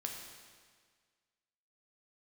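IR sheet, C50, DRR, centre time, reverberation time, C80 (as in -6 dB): 3.5 dB, 1.0 dB, 57 ms, 1.7 s, 5.0 dB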